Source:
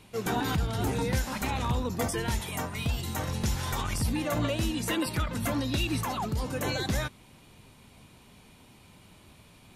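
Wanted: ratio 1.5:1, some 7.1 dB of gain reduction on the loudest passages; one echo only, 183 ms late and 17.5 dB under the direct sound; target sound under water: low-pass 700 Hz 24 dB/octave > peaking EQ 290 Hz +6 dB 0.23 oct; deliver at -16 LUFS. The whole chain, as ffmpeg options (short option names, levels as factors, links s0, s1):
-af "acompressor=threshold=0.00631:ratio=1.5,lowpass=f=700:w=0.5412,lowpass=f=700:w=1.3066,equalizer=f=290:t=o:w=0.23:g=6,aecho=1:1:183:0.133,volume=11.9"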